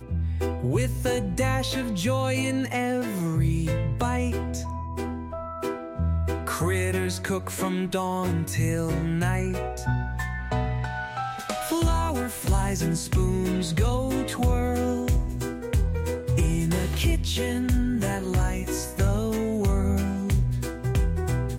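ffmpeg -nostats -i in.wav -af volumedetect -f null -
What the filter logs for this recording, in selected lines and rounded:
mean_volume: -25.2 dB
max_volume: -12.7 dB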